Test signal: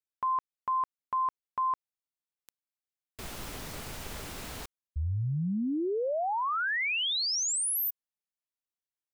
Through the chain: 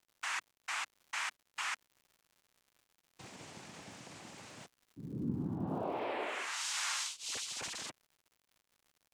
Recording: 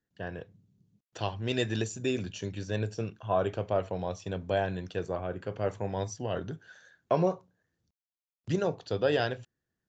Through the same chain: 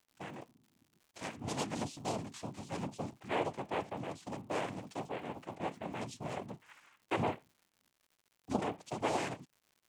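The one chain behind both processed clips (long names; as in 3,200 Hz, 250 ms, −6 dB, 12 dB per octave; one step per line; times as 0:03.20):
phase distortion by the signal itself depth 0.27 ms
cochlear-implant simulation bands 4
surface crackle 170 per second −48 dBFS
level −6.5 dB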